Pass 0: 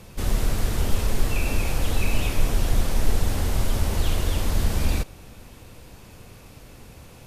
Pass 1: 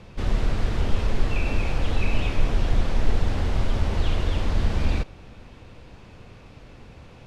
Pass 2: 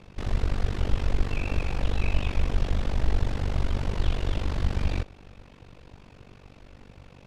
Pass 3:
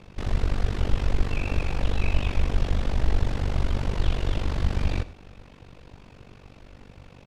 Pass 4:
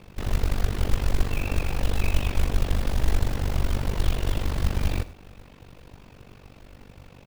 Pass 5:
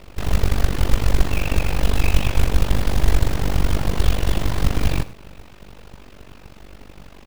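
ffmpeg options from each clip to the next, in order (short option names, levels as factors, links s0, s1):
-af "lowpass=3800"
-af "tremolo=f=48:d=0.919"
-af "aecho=1:1:94:0.112,volume=1.19"
-af "acrusher=bits=5:mode=log:mix=0:aa=0.000001"
-af "aeval=exprs='abs(val(0))':c=same,volume=2.11"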